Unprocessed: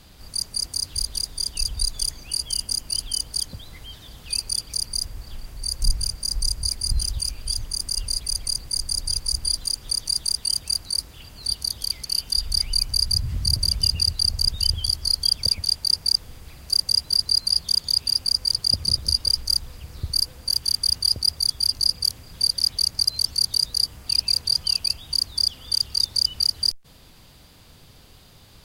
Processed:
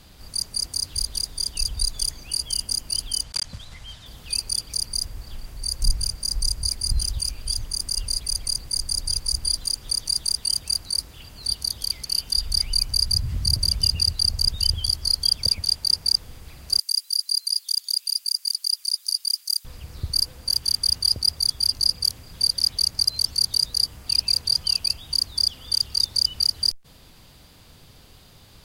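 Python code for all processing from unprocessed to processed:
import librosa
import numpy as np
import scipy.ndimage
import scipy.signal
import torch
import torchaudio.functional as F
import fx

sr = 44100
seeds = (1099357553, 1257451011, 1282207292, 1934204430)

y = fx.chain(x, sr, fx.block_float(bits=3),
    fx.lowpass(hz=7700.0, slope=12),
    fx.peak_eq(hz=360.0, db=-9.5, octaves=0.84), at=(3.23, 4.06))
y = fx.chain(y, sr, fx.highpass(hz=1100.0, slope=12),
    fx.differentiator(), at=(16.79, 19.65))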